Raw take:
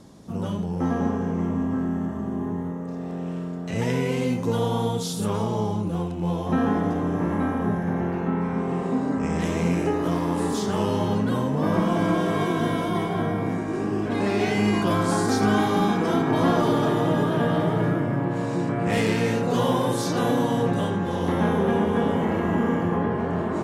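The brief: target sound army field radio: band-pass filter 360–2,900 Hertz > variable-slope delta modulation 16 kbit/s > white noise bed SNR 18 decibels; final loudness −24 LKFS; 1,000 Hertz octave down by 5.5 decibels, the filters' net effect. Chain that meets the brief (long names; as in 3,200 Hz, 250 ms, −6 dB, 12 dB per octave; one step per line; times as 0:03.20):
band-pass filter 360–2,900 Hz
parametric band 1,000 Hz −7 dB
variable-slope delta modulation 16 kbit/s
white noise bed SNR 18 dB
level +6.5 dB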